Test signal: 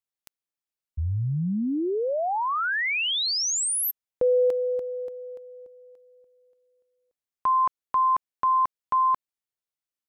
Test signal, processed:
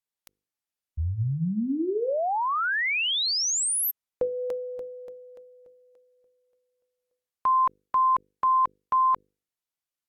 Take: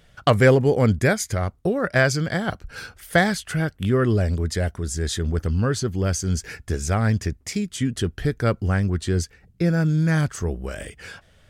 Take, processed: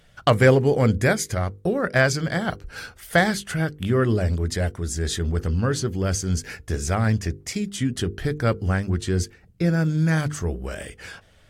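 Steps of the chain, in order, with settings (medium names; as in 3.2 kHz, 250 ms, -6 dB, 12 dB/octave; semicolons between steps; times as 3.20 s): hum notches 50/100/150/200/250/300/350/400/450/500 Hz; AAC 64 kbps 48 kHz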